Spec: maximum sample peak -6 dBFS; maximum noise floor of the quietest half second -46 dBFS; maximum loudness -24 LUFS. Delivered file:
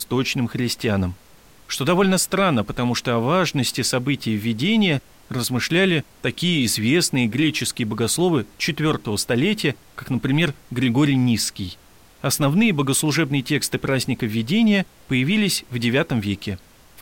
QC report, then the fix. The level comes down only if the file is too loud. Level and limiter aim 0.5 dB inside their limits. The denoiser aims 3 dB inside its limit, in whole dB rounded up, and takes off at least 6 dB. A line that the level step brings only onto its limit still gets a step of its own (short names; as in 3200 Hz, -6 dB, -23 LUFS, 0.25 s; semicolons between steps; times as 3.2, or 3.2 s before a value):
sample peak -8.0 dBFS: OK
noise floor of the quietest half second -49 dBFS: OK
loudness -20.5 LUFS: fail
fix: gain -4 dB